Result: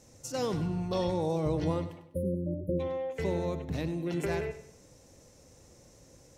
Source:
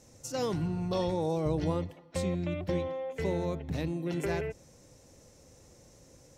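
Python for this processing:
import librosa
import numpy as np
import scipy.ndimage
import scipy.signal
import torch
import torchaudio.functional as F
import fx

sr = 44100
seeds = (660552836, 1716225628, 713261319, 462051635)

y = fx.brickwall_bandstop(x, sr, low_hz=610.0, high_hz=9300.0, at=(2.06, 2.79), fade=0.02)
y = fx.echo_feedback(y, sr, ms=99, feedback_pct=36, wet_db=-13.0)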